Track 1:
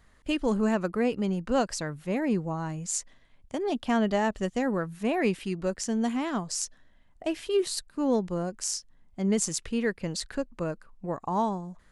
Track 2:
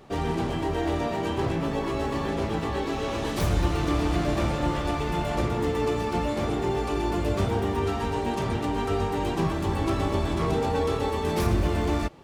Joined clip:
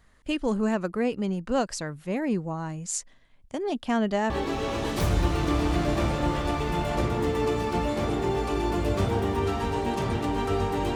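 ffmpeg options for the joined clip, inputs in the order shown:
ffmpeg -i cue0.wav -i cue1.wav -filter_complex "[0:a]apad=whole_dur=10.95,atrim=end=10.95,atrim=end=4.302[link_01];[1:a]atrim=start=2.698:end=9.35[link_02];[link_01][link_02]acrossfade=duration=0.004:curve1=hsin:curve2=hsin" out.wav

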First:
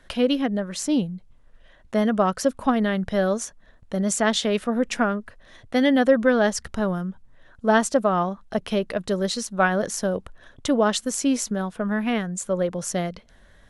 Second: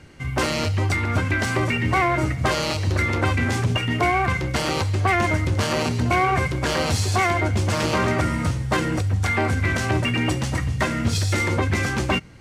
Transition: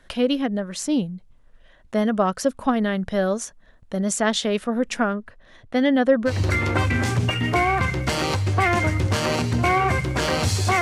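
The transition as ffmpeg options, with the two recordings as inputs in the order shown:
ffmpeg -i cue0.wav -i cue1.wav -filter_complex "[0:a]asettb=1/sr,asplit=3[link_01][link_02][link_03];[link_01]atrim=end=5.134[link_04];[link_02]atrim=start=5.13:end=6.33,asetpts=PTS-STARTPTS,afade=type=in:duration=0.004:curve=qsin,afade=type=out:start_time=1.196:duration=0.004:curve=qsin,highshelf=frequency=5700:gain=-9[link_05];[link_03]atrim=start=6.326[link_06];[link_04][link_05]acrossfade=duration=0.004:curve1=hsin:curve2=qsin[link_07];[link_07][link_06]acrossfade=duration=0.004:curve1=qsin:curve2=hsin,apad=whole_dur=10.81,atrim=end=10.81,atrim=end=6.33,asetpts=PTS-STARTPTS[link_08];[1:a]atrim=start=2.72:end=7.28,asetpts=PTS-STARTPTS[link_09];[link_08][link_09]acrossfade=duration=0.08:curve1=tri:curve2=tri" out.wav

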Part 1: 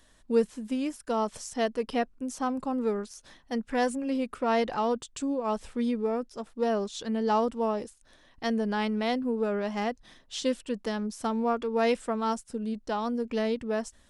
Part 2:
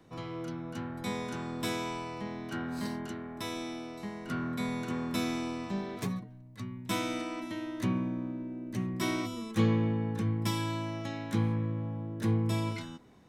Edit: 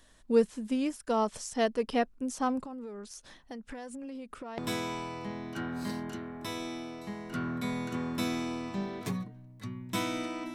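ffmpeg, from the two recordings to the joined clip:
ffmpeg -i cue0.wav -i cue1.wav -filter_complex "[0:a]asettb=1/sr,asplit=3[link_01][link_02][link_03];[link_01]atrim=end=2.604[link_04];[link_02]atrim=start=2.6:end=4.58,asetpts=PTS-STARTPTS,afade=type=in:duration=0.004:curve=qsin,afade=type=out:start_time=1.976:duration=0.004:curve=qsin,acompressor=threshold=-38dB:ratio=16:attack=3.2:release=140:knee=1:detection=peak[link_05];[link_03]atrim=start=4.576[link_06];[link_04][link_05]acrossfade=duration=0.004:curve1=hsin:curve2=qsin[link_07];[link_07][link_06]acrossfade=duration=0.004:curve1=qsin:curve2=hsin,apad=whole_dur=10.54,atrim=end=10.54,atrim=end=4.582[link_08];[1:a]atrim=start=1.538:end=7.5[link_09];[link_08][link_09]acrossfade=duration=0.004:curve1=hsin:curve2=hsin" out.wav

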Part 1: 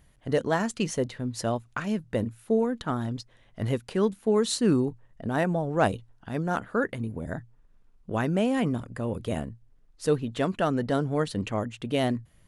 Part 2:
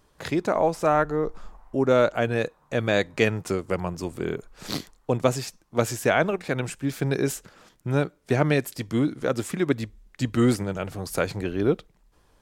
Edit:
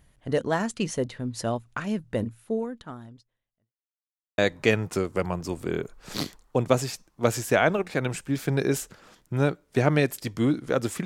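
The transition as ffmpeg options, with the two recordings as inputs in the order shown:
ffmpeg -i cue0.wav -i cue1.wav -filter_complex "[0:a]apad=whole_dur=11.05,atrim=end=11.05,asplit=2[link_01][link_02];[link_01]atrim=end=3.73,asetpts=PTS-STARTPTS,afade=type=out:start_time=2.23:duration=1.5:curve=qua[link_03];[link_02]atrim=start=3.73:end=4.38,asetpts=PTS-STARTPTS,volume=0[link_04];[1:a]atrim=start=2.92:end=9.59,asetpts=PTS-STARTPTS,afade=type=in:duration=0.004:curve=hsin[link_05];[link_03][link_04][link_05]concat=n=3:v=0:a=1" out.wav

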